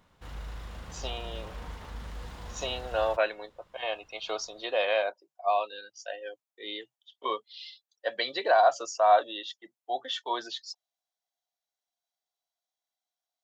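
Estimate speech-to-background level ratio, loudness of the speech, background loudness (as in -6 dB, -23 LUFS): 14.0 dB, -29.5 LUFS, -43.5 LUFS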